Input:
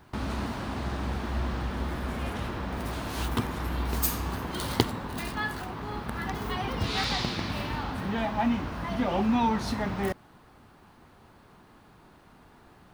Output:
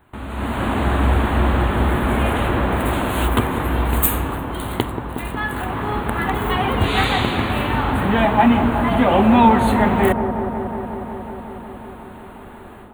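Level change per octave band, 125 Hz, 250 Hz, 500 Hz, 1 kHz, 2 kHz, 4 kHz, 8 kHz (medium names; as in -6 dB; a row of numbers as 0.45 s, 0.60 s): +11.5 dB, +12.0 dB, +14.0 dB, +13.5 dB, +12.0 dB, +7.0 dB, +6.5 dB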